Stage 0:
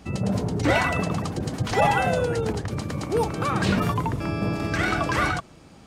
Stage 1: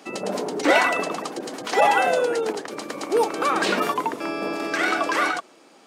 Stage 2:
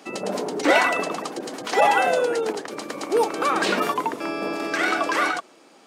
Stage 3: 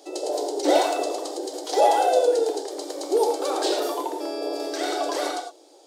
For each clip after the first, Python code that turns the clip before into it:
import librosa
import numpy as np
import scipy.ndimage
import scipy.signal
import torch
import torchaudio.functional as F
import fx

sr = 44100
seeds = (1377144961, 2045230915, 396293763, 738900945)

y1 = scipy.signal.sosfilt(scipy.signal.butter(4, 300.0, 'highpass', fs=sr, output='sos'), x)
y1 = fx.rider(y1, sr, range_db=4, speed_s=2.0)
y1 = y1 * librosa.db_to_amplitude(2.5)
y2 = y1
y3 = fx.brickwall_highpass(y2, sr, low_hz=290.0)
y3 = fx.band_shelf(y3, sr, hz=1700.0, db=-15.0, octaves=1.7)
y3 = fx.rev_gated(y3, sr, seeds[0], gate_ms=130, shape='flat', drr_db=2.5)